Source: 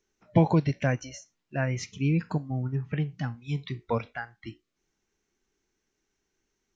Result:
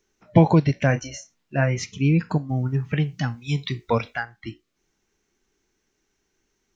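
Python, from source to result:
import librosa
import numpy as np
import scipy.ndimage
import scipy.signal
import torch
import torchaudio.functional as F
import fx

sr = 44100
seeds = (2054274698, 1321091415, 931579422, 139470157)

y = fx.doubler(x, sr, ms=29.0, db=-9.0, at=(0.87, 1.78))
y = fx.high_shelf(y, sr, hz=3400.0, db=10.5, at=(2.49, 4.23))
y = F.gain(torch.from_numpy(y), 6.0).numpy()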